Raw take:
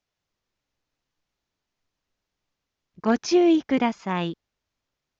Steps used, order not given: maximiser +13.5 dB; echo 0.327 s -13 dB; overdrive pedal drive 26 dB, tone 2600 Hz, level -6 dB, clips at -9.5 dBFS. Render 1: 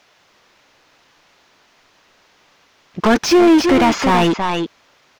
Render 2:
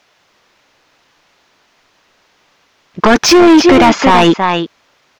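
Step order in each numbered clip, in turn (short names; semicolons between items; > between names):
echo > maximiser > overdrive pedal; echo > overdrive pedal > maximiser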